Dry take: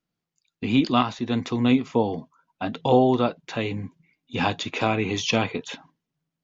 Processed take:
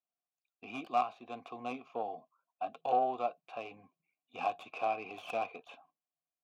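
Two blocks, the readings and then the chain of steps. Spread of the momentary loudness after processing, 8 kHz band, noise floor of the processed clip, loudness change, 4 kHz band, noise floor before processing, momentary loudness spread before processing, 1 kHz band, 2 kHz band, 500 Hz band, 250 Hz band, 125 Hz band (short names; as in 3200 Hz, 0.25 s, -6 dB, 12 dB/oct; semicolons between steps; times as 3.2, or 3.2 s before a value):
17 LU, n/a, under -85 dBFS, -13.0 dB, -22.5 dB, -85 dBFS, 14 LU, -6.5 dB, -15.0 dB, -13.0 dB, -25.0 dB, -32.5 dB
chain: tracing distortion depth 0.27 ms; vowel filter a; gain -2.5 dB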